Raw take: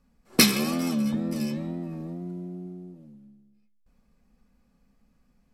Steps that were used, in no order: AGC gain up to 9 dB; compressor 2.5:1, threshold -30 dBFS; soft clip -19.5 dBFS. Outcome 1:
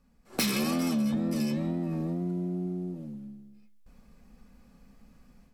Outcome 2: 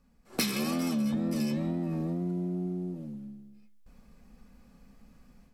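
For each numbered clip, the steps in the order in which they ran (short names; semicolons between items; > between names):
soft clip > AGC > compressor; AGC > compressor > soft clip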